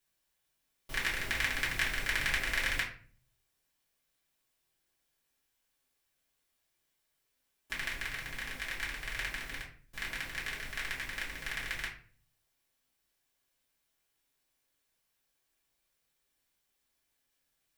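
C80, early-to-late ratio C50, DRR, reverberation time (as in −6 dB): 11.5 dB, 7.5 dB, −6.5 dB, 0.45 s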